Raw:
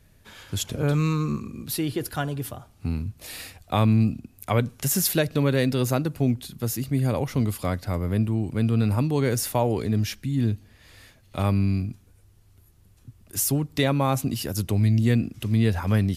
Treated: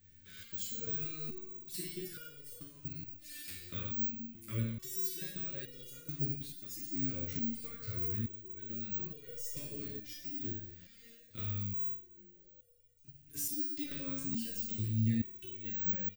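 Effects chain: Chebyshev low-pass 9.2 kHz, order 3; treble shelf 5.5 kHz +5.5 dB; compression 4:1, threshold -28 dBFS, peak gain reduction 11 dB; Butterworth band-stop 800 Hz, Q 0.72; on a send: frequency-shifting echo 188 ms, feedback 62%, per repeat -150 Hz, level -21 dB; on the sum: Schroeder reverb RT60 0.69 s, combs from 31 ms, DRR 0.5 dB; careless resampling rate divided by 2×, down filtered, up zero stuff; resonator arpeggio 2.3 Hz 89–480 Hz

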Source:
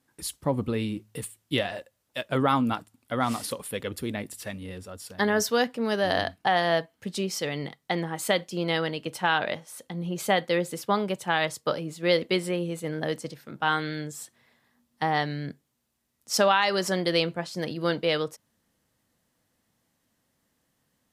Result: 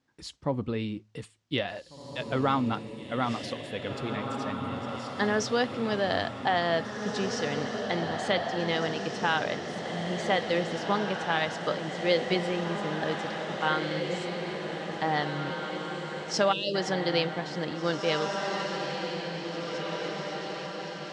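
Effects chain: low-pass 6.3 kHz 24 dB/octave; echo that smears into a reverb 1960 ms, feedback 62%, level -5 dB; time-frequency box 16.53–16.75 s, 640–2500 Hz -28 dB; trim -3 dB

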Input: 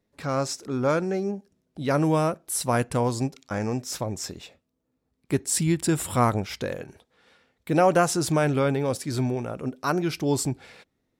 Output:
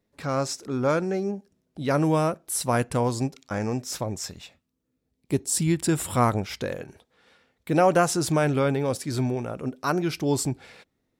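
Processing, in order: 4.17–5.59 s: peaking EQ 270 Hz -> 2.2 kHz -10 dB 0.86 oct

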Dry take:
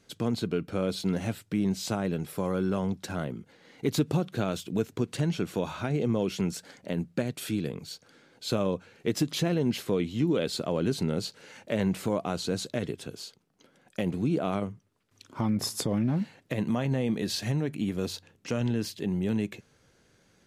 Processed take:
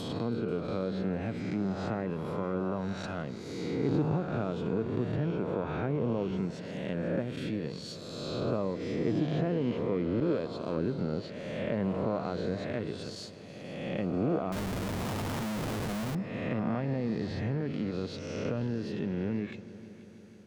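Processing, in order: reverse spectral sustain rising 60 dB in 1.72 s; 10.20–10.99 s: expander -21 dBFS; low-pass that closes with the level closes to 1.6 kHz, closed at -22 dBFS; on a send: multi-head delay 162 ms, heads all three, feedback 65%, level -22 dB; 14.52–16.15 s: on the sum: Schmitt trigger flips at -37.5 dBFS; trim -5.5 dB

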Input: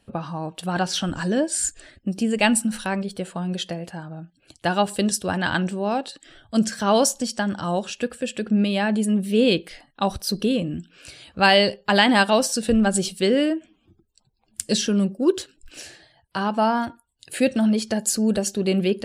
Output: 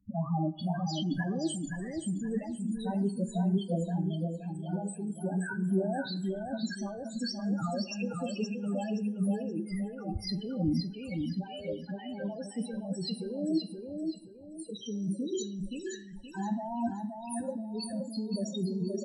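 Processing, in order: treble shelf 6.8 kHz +9 dB; compressor with a negative ratio -28 dBFS, ratio -1; loudest bins only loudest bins 4; two-slope reverb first 0.43 s, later 1.7 s, from -18 dB, DRR 10.5 dB; touch-sensitive phaser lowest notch 570 Hz, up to 3.7 kHz, full sweep at -25 dBFS; bass shelf 140 Hz -6.5 dB; feedback delay 523 ms, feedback 32%, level -5 dB; trim -1.5 dB

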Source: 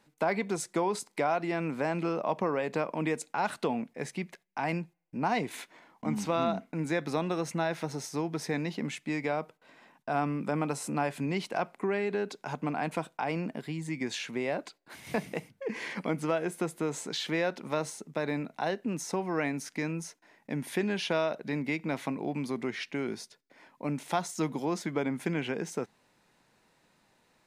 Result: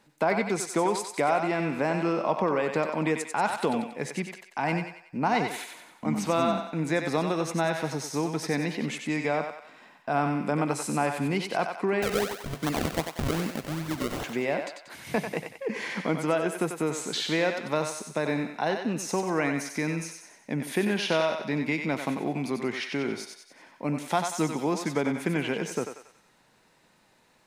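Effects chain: 12.02–14.24 s: decimation with a swept rate 36×, swing 100% 2.6 Hz; thinning echo 93 ms, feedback 49%, high-pass 580 Hz, level -5 dB; trim +3.5 dB

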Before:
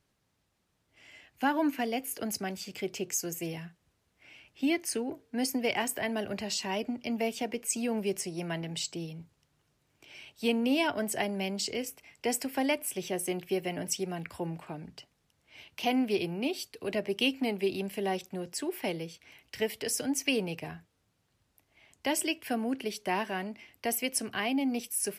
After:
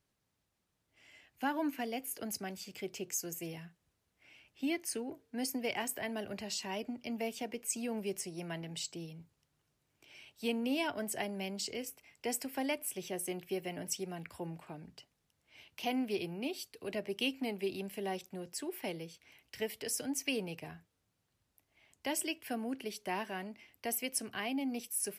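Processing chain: treble shelf 8.7 kHz +4.5 dB; trim -6.5 dB

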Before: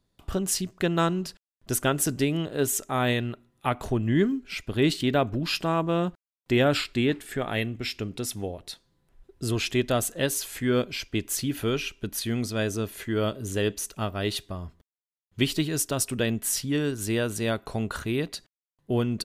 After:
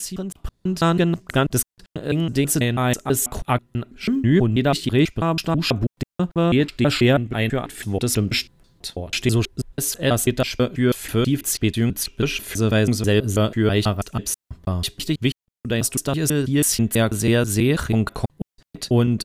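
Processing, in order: slices played last to first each 163 ms, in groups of 4; tone controls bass +5 dB, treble +1 dB; level rider gain up to 16.5 dB; trim -5 dB

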